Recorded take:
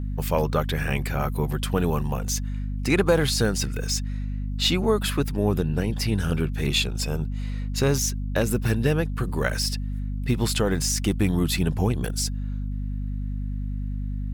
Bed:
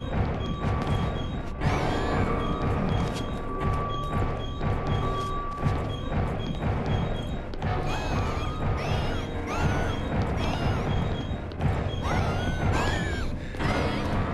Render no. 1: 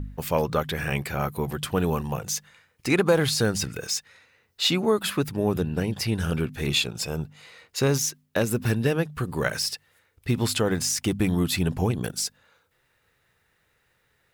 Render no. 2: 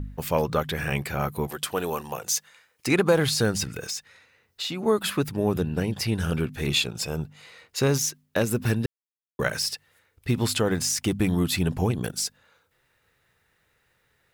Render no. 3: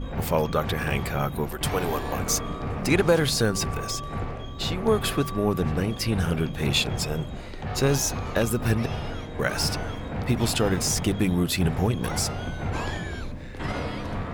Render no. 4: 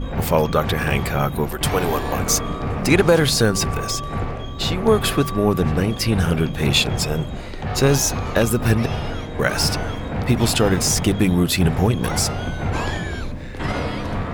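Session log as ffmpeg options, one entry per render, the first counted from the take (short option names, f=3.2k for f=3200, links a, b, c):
-af "bandreject=f=50:t=h:w=4,bandreject=f=100:t=h:w=4,bandreject=f=150:t=h:w=4,bandreject=f=200:t=h:w=4,bandreject=f=250:t=h:w=4"
-filter_complex "[0:a]asettb=1/sr,asplit=3[a][b][c];[a]atrim=end=1.474[d];[b]atrim=start=1.47:end=2.87,asetpts=PTS-STARTPTS,afade=t=in:d=0.004:c=qsin,afade=t=out:st=1.396:d=0.004:c=qsin,bass=f=250:g=-14,treble=f=4k:g=4[e];[c]atrim=start=2.866[f];[d][e]acrossfade=d=0.004:c1=hsin:c2=qsin[g];[g][f]acrossfade=d=0.004:c1=qsin:c2=hsin,asettb=1/sr,asplit=3[h][i][j];[h]atrim=end=3.634[k];[i]atrim=start=3.63:end=4.86,asetpts=PTS-STARTPTS,afade=t=in:d=0.004:c=qsin,afade=t=out:st=1.226:d=0.004:c=qsin,acompressor=threshold=-27dB:ratio=6:attack=3.2:release=140:knee=1:detection=peak[l];[j]atrim=start=4.856[m];[k][l]acrossfade=d=0.004:c1=hsin:c2=qsin[n];[n][m]acrossfade=d=0.004:c1=qsin:c2=hsin,asplit=3[o][p][q];[o]atrim=end=8.86,asetpts=PTS-STARTPTS,afade=t=out:st=8.856:d=0.004:c=hsin[r];[p]atrim=start=8.86:end=9.39,asetpts=PTS-STARTPTS,volume=0[s];[q]atrim=start=9.39,asetpts=PTS-STARTPTS,afade=t=in:d=0.004:c=hsin[t];[r][s][t]concat=n=3:v=0:a=1"
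-filter_complex "[1:a]volume=-4dB[a];[0:a][a]amix=inputs=2:normalize=0"
-af "volume=6dB,alimiter=limit=-2dB:level=0:latency=1"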